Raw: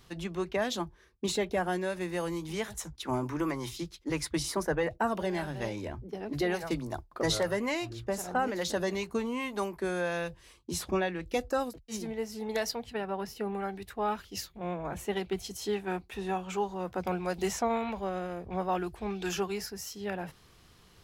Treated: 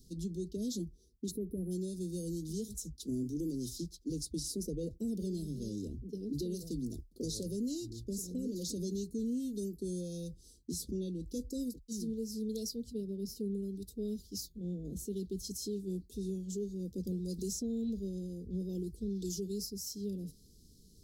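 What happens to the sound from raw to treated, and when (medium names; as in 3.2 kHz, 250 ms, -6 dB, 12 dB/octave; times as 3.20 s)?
1.31–1.71 s: time-frequency box 2.1–9.7 kHz -29 dB
whole clip: inverse Chebyshev band-stop 750–2400 Hz, stop band 50 dB; comb 4.3 ms, depth 37%; peak limiter -29.5 dBFS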